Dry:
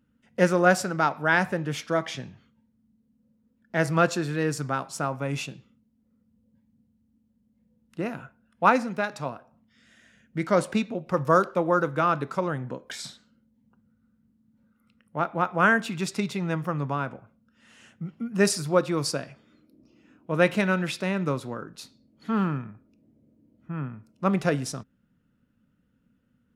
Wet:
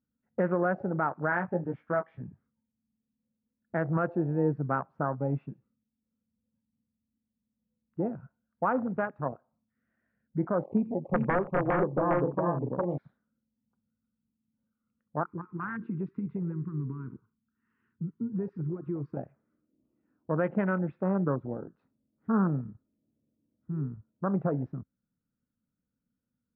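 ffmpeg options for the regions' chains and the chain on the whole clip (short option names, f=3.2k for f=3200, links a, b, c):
-filter_complex "[0:a]asettb=1/sr,asplit=3[a][b][c];[a]atrim=end=1.304[d];[b]atrim=start=1.3:end=2.21,asetpts=PTS-STARTPTS,afade=t=in:d=0.004:c=qsin,afade=t=out:st=0.906:d=0.004:c=qsin,lowshelf=f=450:g=-4.5,asplit=2[e][f];[f]adelay=17,volume=-4dB[g];[e][g]amix=inputs=2:normalize=0,atrim=end_sample=40131[h];[c]atrim=start=2.206[i];[d][h]acrossfade=d=0.004:c1=hsin:c2=qsin[j];[j][i]acrossfade=d=0.004:c1=qsin:c2=hsin,asettb=1/sr,asplit=3[k][l][m];[k]atrim=end=10.644[n];[l]atrim=start=10.64:end=12.98,asetpts=PTS-STARTPTS,afade=t=in:d=0.004:c=qsin,afade=t=out:st=2.336:d=0.004:c=qsin,asuperstop=centerf=1600:order=12:qfactor=1.4,aeval=exprs='(mod(5.31*val(0)+1,2)-1)/5.31':c=same,aecho=1:1:84|406|446:0.133|0.708|0.355,atrim=end_sample=103194[o];[m]atrim=start=12.976[p];[n][o]acrossfade=d=0.004:c1=hsin:c2=qsin[q];[q][p]acrossfade=d=0.004:c1=qsin:c2=hsin,asettb=1/sr,asplit=3[r][s][t];[r]atrim=end=15.234[u];[s]atrim=start=15.23:end=19.17,asetpts=PTS-STARTPTS,afade=t=in:d=0.004:c=qsin,afade=t=out:st=3.936:d=0.004:c=qsin,acompressor=threshold=-27dB:ratio=8:attack=3.2:release=140:knee=1:detection=peak,asuperstop=centerf=650:order=8:qfactor=1.3[v];[t]atrim=start=19.166[w];[u][v]acrossfade=d=0.004:c1=hsin:c2=qsin[x];[x][w]acrossfade=d=0.004:c1=qsin:c2=hsin,afwtdn=0.0355,lowpass=f=1.6k:w=0.5412,lowpass=f=1.6k:w=1.3066,alimiter=limit=-17dB:level=0:latency=1:release=159"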